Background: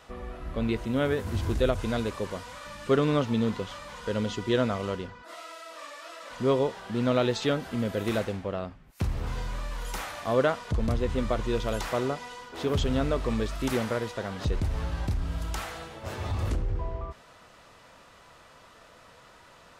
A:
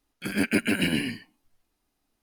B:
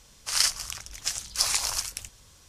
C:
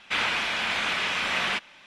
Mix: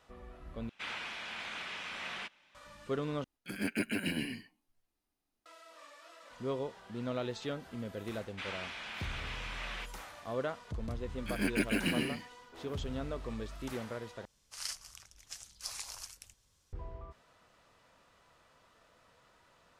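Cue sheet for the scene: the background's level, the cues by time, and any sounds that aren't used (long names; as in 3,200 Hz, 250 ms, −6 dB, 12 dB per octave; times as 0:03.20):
background −12 dB
0:00.69: overwrite with C −15 dB
0:03.24: overwrite with A −10 dB
0:08.27: mix in C −16 dB
0:11.04: mix in A −7.5 dB
0:14.25: overwrite with B −17 dB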